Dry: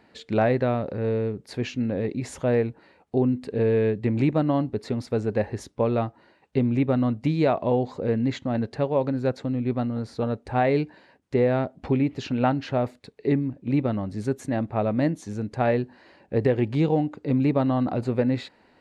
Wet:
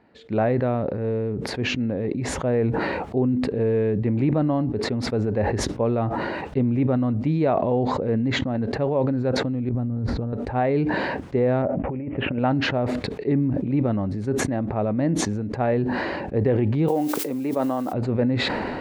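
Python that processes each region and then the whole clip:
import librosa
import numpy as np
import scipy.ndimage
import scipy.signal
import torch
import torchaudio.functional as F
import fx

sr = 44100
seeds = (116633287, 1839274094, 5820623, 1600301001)

y = fx.chain(x, sr, fx.riaa(side='playback'),
    fx.over_compress(threshold_db=-27.0, ratio=-1.0), at=(9.69, 10.33))
y = fx.chain(y, sr, fx.steep_lowpass(hz=2800.0, slope=48),
    fx.over_compress(threshold_db=-27.0, ratio=-0.5),
    fx.peak_eq(hz=560.0, db=9.5, octaves=0.26), at=(11.62, 12.39))
y = fx.highpass(y, sr, hz=320.0, slope=12, at=(16.87, 17.92), fade=0.02)
y = fx.dmg_noise_colour(y, sr, seeds[0], colour='violet', level_db=-37.0, at=(16.87, 17.92), fade=0.02)
y = fx.lowpass(y, sr, hz=1500.0, slope=6)
y = fx.sustainer(y, sr, db_per_s=21.0)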